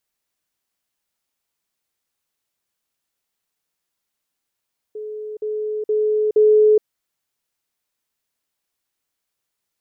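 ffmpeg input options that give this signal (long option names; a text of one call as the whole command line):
ffmpeg -f lavfi -i "aevalsrc='pow(10,(-27.5+6*floor(t/0.47))/20)*sin(2*PI*427*t)*clip(min(mod(t,0.47),0.42-mod(t,0.47))/0.005,0,1)':duration=1.88:sample_rate=44100" out.wav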